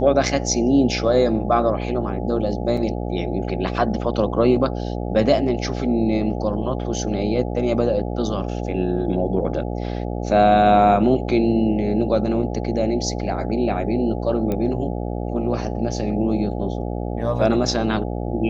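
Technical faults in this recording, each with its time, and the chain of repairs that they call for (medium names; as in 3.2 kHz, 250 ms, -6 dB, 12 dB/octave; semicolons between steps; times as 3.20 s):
buzz 60 Hz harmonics 14 -26 dBFS
2.77 s: dropout 4.1 ms
14.52 s: pop -13 dBFS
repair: de-click; de-hum 60 Hz, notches 14; interpolate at 2.77 s, 4.1 ms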